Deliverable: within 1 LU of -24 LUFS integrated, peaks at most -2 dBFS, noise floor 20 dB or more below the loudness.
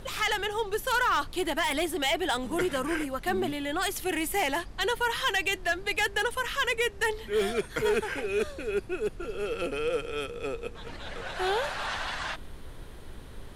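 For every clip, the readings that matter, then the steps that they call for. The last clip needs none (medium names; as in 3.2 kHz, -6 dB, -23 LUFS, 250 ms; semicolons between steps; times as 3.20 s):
clipped samples 0.5%; clipping level -19.5 dBFS; noise floor -44 dBFS; noise floor target -49 dBFS; loudness -29.0 LUFS; peak level -19.5 dBFS; loudness target -24.0 LUFS
-> clip repair -19.5 dBFS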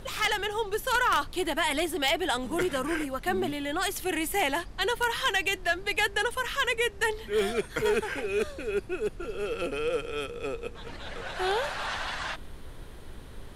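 clipped samples 0.0%; noise floor -44 dBFS; noise floor target -49 dBFS
-> noise print and reduce 6 dB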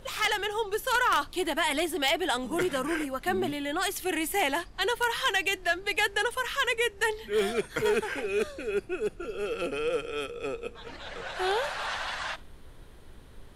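noise floor -49 dBFS; loudness -29.0 LUFS; peak level -10.5 dBFS; loudness target -24.0 LUFS
-> trim +5 dB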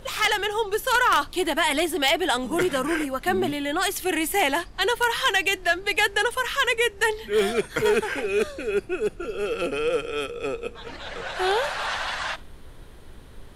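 loudness -24.0 LUFS; peak level -5.5 dBFS; noise floor -44 dBFS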